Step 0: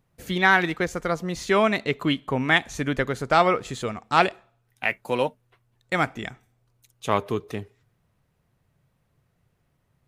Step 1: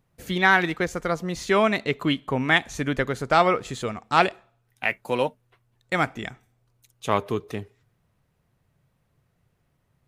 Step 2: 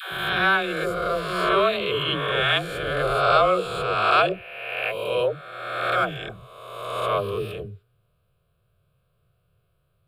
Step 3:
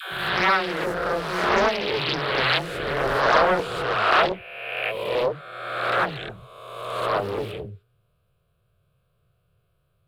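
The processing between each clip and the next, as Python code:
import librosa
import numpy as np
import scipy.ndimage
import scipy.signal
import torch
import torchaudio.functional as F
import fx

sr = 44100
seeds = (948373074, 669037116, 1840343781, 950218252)

y1 = x
y2 = fx.spec_swells(y1, sr, rise_s=1.52)
y2 = fx.fixed_phaser(y2, sr, hz=1300.0, stages=8)
y2 = fx.dispersion(y2, sr, late='lows', ms=133.0, hz=400.0)
y3 = fx.doppler_dist(y2, sr, depth_ms=0.58)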